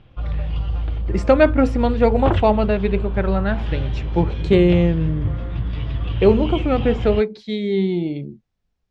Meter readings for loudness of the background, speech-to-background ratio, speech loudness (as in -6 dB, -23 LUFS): -25.5 LUFS, 6.0 dB, -19.5 LUFS